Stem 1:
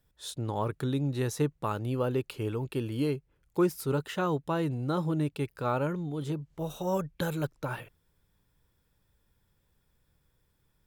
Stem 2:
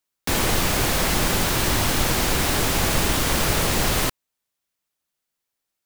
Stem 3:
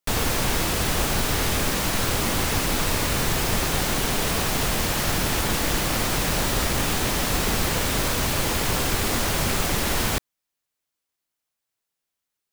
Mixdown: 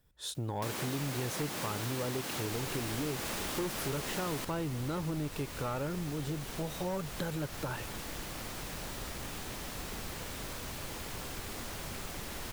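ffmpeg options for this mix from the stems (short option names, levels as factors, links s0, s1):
-filter_complex "[0:a]asoftclip=type=tanh:threshold=0.0596,volume=1.19[s0];[1:a]highpass=170,acompressor=mode=upward:threshold=0.0398:ratio=2.5,adelay=350,volume=0.266[s1];[2:a]adelay=2450,volume=0.133[s2];[s0][s1][s2]amix=inputs=3:normalize=0,acompressor=threshold=0.02:ratio=3"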